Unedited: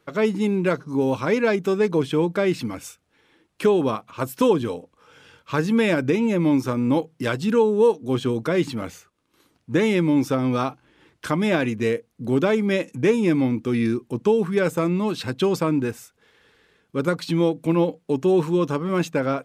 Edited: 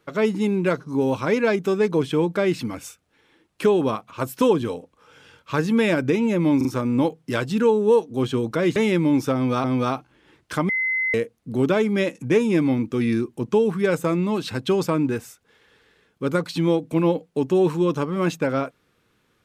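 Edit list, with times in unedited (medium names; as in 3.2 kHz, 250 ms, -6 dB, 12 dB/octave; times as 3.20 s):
6.57 s: stutter 0.04 s, 3 plays
8.68–9.79 s: delete
10.37–10.67 s: loop, 2 plays
11.42–11.87 s: bleep 2.05 kHz -20 dBFS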